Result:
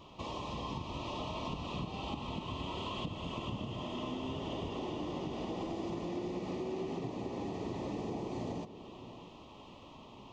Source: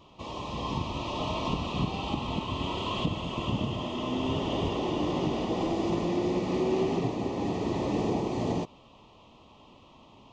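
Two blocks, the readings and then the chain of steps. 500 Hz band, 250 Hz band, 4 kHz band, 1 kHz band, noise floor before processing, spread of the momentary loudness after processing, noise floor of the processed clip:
-9.5 dB, -9.5 dB, -8.0 dB, -8.0 dB, -55 dBFS, 12 LU, -53 dBFS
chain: compression 4:1, threshold -39 dBFS, peak gain reduction 13.5 dB; on a send: echo whose repeats swap between lows and highs 656 ms, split 910 Hz, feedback 55%, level -12.5 dB; on the sum: trim +1 dB

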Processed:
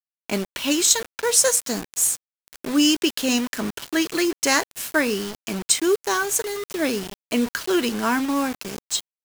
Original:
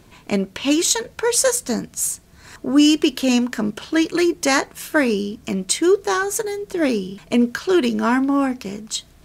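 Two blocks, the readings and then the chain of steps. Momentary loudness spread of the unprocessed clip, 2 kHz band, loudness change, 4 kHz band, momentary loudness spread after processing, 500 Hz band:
9 LU, -1.0 dB, -2.0 dB, +0.5 dB, 11 LU, -4.0 dB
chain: tilt EQ +1.5 dB/octave; bit crusher 5-bit; trim -2.5 dB

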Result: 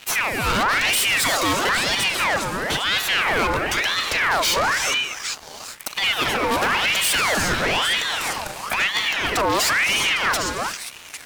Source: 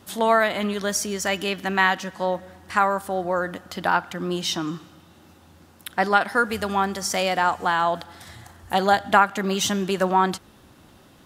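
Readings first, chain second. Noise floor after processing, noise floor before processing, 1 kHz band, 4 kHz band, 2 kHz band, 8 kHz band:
-40 dBFS, -52 dBFS, -1.5 dB, +10.0 dB, +6.5 dB, +7.5 dB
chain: compressor with a negative ratio -24 dBFS, ratio -0.5; waveshaping leveller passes 1; high-pass 55 Hz; repeats whose band climbs or falls 402 ms, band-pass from 3.5 kHz, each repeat 0.7 oct, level -9 dB; gated-style reverb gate 390 ms rising, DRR 8.5 dB; waveshaping leveller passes 3; saturation -14 dBFS, distortion -17 dB; ring modulator with a swept carrier 1.7 kHz, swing 60%, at 1 Hz

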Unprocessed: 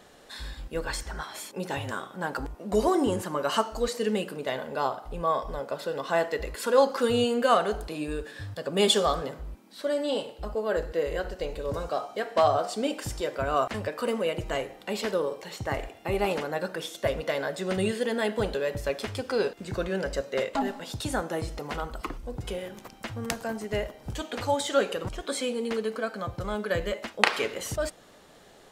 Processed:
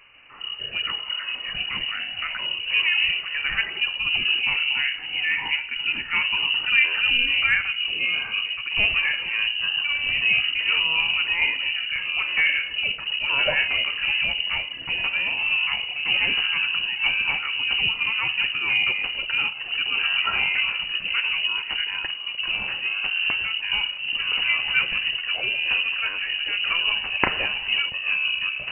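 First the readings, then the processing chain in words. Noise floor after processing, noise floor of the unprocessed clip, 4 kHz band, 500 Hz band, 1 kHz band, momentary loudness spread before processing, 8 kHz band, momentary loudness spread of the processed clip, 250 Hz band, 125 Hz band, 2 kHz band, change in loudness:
-34 dBFS, -53 dBFS, +15.0 dB, -16.0 dB, -5.0 dB, 12 LU, under -40 dB, 7 LU, -14.0 dB, -9.5 dB, +15.0 dB, +7.5 dB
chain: octave divider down 2 oct, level +2 dB; ever faster or slower copies 147 ms, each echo -7 st, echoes 3; frequency inversion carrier 2.9 kHz

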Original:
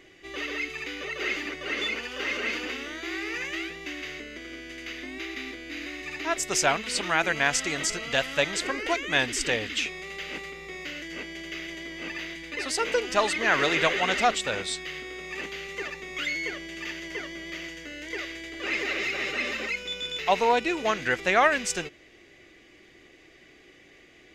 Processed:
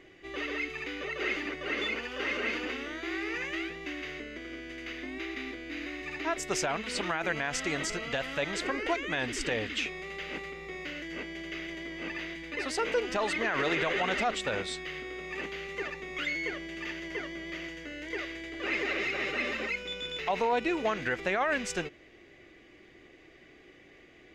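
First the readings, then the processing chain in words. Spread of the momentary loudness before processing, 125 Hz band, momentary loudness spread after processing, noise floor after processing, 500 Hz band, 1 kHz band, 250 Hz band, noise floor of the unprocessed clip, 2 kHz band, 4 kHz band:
13 LU, -2.0 dB, 10 LU, -56 dBFS, -3.5 dB, -6.0 dB, -1.0 dB, -55 dBFS, -4.5 dB, -6.5 dB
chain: treble shelf 3.7 kHz -11 dB; peak limiter -19.5 dBFS, peak gain reduction 10.5 dB

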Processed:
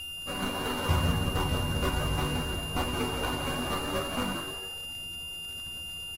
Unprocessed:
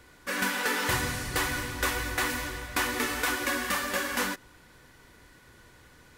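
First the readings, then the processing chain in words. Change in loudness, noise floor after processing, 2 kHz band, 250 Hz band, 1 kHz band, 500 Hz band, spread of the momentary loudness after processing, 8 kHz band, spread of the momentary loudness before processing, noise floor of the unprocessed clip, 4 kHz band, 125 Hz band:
-2.0 dB, -39 dBFS, -6.0 dB, +2.5 dB, -1.0 dB, +1.5 dB, 8 LU, -6.0 dB, 4 LU, -56 dBFS, +1.5 dB, +8.5 dB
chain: median filter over 25 samples; treble shelf 2.6 kHz -3.5 dB; hum notches 60/120/180/240/300/360/420/480/540 Hz; frequency-shifting echo 171 ms, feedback 37%, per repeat +91 Hz, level -6 dB; chorus voices 4, 0.67 Hz, delay 12 ms, depth 1.2 ms; short-mantissa float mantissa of 2-bit; crackle 57 per s -45 dBFS; whistle 2.8 kHz -41 dBFS; sample-rate reducer 14 kHz, jitter 0%; FFT filter 140 Hz 0 dB, 430 Hz -7 dB, 1.2 kHz -4 dB; trim +9 dB; AAC 48 kbps 44.1 kHz

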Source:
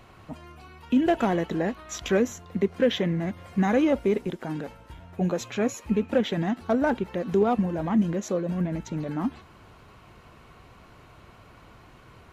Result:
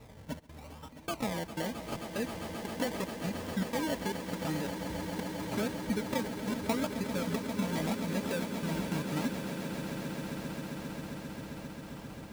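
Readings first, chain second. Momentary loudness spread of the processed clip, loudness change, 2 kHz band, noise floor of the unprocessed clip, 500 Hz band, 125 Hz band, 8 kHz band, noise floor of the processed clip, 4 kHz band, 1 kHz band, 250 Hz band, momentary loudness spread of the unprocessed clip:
11 LU, -9.5 dB, -4.5 dB, -52 dBFS, -10.5 dB, -6.5 dB, no reading, -49 dBFS, -3.0 dB, -7.0 dB, -8.5 dB, 11 LU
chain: compression, threshold -30 dBFS, peak gain reduction 13 dB; trance gate "xxxx.xxxx.." 153 bpm -24 dB; decimation with a swept rate 28×, swing 60% 0.82 Hz; comb of notches 360 Hz; echo with a slow build-up 133 ms, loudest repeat 8, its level -12 dB

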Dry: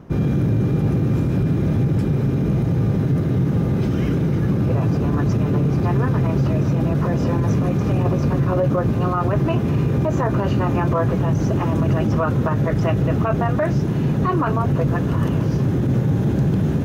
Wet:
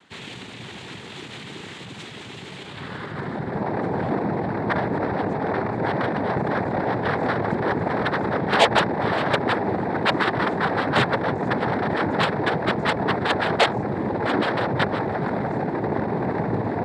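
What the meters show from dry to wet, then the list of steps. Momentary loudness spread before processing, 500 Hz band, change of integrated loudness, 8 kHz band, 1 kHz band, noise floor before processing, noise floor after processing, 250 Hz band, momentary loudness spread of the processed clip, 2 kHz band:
1 LU, -0.5 dB, -4.0 dB, no reading, +4.0 dB, -21 dBFS, -38 dBFS, -6.5 dB, 16 LU, +8.5 dB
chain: band-pass sweep 2.9 kHz -> 540 Hz, 2.55–3.71 s; Chebyshev shaper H 3 -14 dB, 6 -9 dB, 7 -9 dB, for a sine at -13 dBFS; noise-vocoded speech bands 6; trim +3.5 dB

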